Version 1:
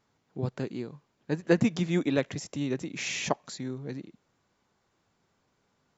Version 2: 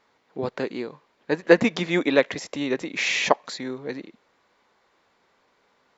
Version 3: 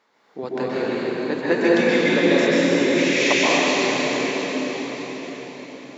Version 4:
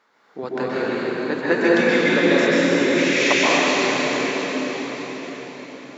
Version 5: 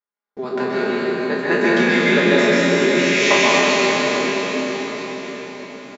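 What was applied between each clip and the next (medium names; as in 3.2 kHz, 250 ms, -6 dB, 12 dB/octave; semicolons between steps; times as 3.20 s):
ten-band graphic EQ 125 Hz -7 dB, 250 Hz +3 dB, 500 Hz +9 dB, 1 kHz +8 dB, 2 kHz +10 dB, 4 kHz +8 dB; trim -1 dB
high-pass 170 Hz 12 dB/octave; compression 1.5:1, threshold -29 dBFS, peak gain reduction 7.5 dB; reverberation RT60 5.8 s, pre-delay 119 ms, DRR -9.5 dB
peaking EQ 1.4 kHz +6 dB 0.62 oct
spectral sustain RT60 0.53 s; gate -41 dBFS, range -37 dB; comb 4.9 ms, depth 75%; trim -1 dB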